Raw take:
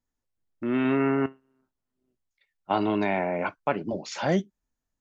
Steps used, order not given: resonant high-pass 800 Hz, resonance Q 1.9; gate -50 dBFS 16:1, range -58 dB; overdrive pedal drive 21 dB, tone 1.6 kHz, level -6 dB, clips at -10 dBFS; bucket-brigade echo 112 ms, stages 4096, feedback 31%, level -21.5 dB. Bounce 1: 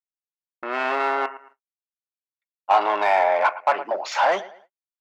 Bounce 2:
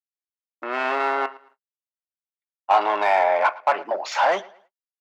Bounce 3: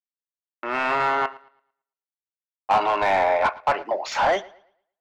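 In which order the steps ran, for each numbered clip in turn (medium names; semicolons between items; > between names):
bucket-brigade echo > overdrive pedal > resonant high-pass > gate; overdrive pedal > bucket-brigade echo > gate > resonant high-pass; resonant high-pass > gate > overdrive pedal > bucket-brigade echo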